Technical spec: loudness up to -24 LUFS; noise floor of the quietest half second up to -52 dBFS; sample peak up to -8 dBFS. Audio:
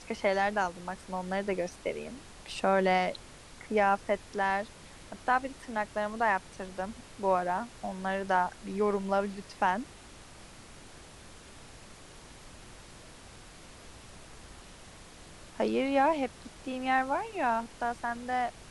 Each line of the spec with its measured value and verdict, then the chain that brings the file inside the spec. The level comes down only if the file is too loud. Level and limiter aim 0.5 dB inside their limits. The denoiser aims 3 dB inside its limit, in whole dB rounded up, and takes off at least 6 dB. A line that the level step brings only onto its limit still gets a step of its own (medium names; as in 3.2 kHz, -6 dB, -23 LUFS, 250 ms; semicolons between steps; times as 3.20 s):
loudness -31.0 LUFS: pass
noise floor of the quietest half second -50 dBFS: fail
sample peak -14.0 dBFS: pass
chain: noise reduction 6 dB, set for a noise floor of -50 dBFS